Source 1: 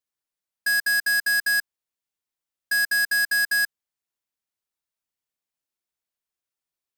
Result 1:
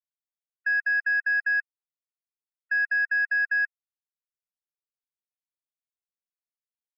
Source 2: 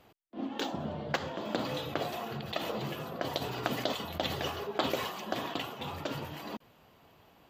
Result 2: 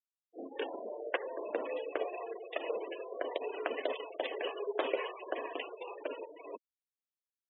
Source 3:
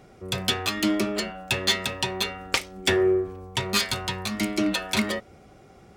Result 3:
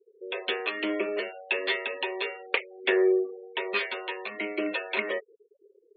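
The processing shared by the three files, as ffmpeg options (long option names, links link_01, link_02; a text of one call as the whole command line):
ffmpeg -i in.wav -af "highpass=frequency=380:width=0.5412,highpass=frequency=380:width=1.3066,equalizer=frequency=440:width_type=q:width=4:gain=6,equalizer=frequency=800:width_type=q:width=4:gain=-7,equalizer=frequency=1300:width_type=q:width=4:gain=-7,equalizer=frequency=2600:width_type=q:width=4:gain=3,lowpass=frequency=2700:width=0.5412,lowpass=frequency=2700:width=1.3066,afftfilt=real='re*gte(hypot(re,im),0.0141)':imag='im*gte(hypot(re,im),0.0141)':win_size=1024:overlap=0.75" out.wav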